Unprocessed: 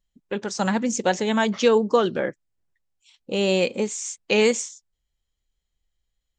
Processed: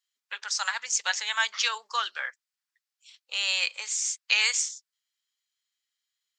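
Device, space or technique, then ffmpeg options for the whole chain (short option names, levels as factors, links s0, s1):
headphones lying on a table: -af "highpass=f=1200:w=0.5412,highpass=f=1200:w=1.3066,equalizer=f=4800:t=o:w=0.53:g=5,volume=1.19"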